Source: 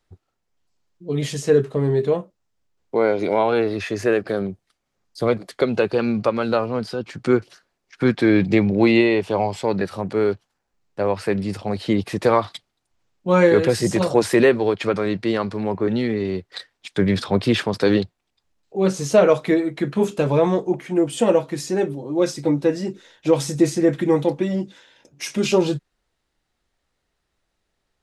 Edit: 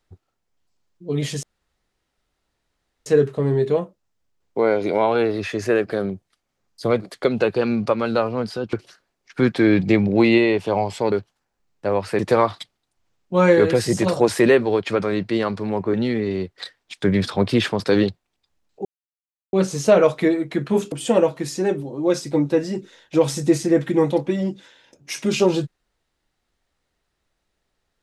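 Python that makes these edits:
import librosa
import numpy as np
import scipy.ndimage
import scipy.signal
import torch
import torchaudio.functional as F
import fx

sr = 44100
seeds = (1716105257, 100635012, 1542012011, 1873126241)

y = fx.edit(x, sr, fx.insert_room_tone(at_s=1.43, length_s=1.63),
    fx.cut(start_s=7.1, length_s=0.26),
    fx.cut(start_s=9.75, length_s=0.51),
    fx.cut(start_s=11.33, length_s=0.8),
    fx.insert_silence(at_s=18.79, length_s=0.68),
    fx.cut(start_s=20.18, length_s=0.86), tone=tone)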